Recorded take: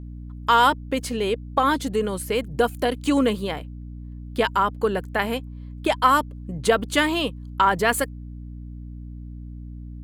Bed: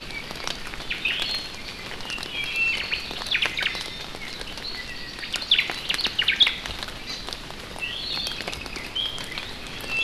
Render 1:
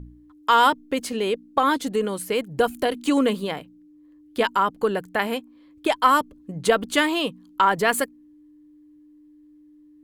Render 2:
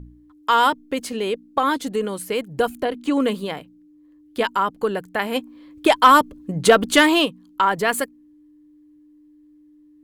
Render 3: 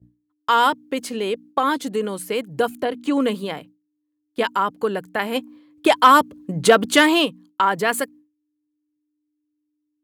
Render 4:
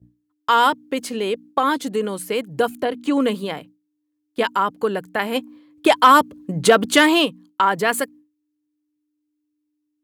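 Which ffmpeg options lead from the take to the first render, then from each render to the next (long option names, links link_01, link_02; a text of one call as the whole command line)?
ffmpeg -i in.wav -af "bandreject=frequency=60:width_type=h:width=4,bandreject=frequency=120:width_type=h:width=4,bandreject=frequency=180:width_type=h:width=4,bandreject=frequency=240:width_type=h:width=4" out.wav
ffmpeg -i in.wav -filter_complex "[0:a]asettb=1/sr,asplit=3[link_01][link_02][link_03];[link_01]atrim=end=2.754[link_04];[link_02]atrim=start=2.75:end=3.2,asetpts=PTS-STARTPTS,afade=type=in:duration=0.004:curve=qsin,afade=type=out:start_time=0.446:duration=0.004:curve=qsin,highshelf=frequency=3900:gain=-11[link_05];[link_03]atrim=start=3.196[link_06];[link_04][link_05]acrossfade=duration=0.004:curve1=hsin:curve2=qsin[link_07];[link_07][link_06]acrossfade=duration=0.004:curve1=qsin:curve2=hsin,asplit=3[link_08][link_09][link_10];[link_08]afade=type=out:start_time=5.34:duration=0.02[link_11];[link_09]acontrast=87,afade=type=in:start_time=5.34:duration=0.02,afade=type=out:start_time=7.24:duration=0.02[link_12];[link_10]afade=type=in:start_time=7.24:duration=0.02[link_13];[link_11][link_12][link_13]amix=inputs=3:normalize=0" out.wav
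ffmpeg -i in.wav -af "highpass=frequency=91:width=0.5412,highpass=frequency=91:width=1.3066,agate=range=-33dB:threshold=-38dB:ratio=3:detection=peak" out.wav
ffmpeg -i in.wav -af "volume=1dB,alimiter=limit=-2dB:level=0:latency=1" out.wav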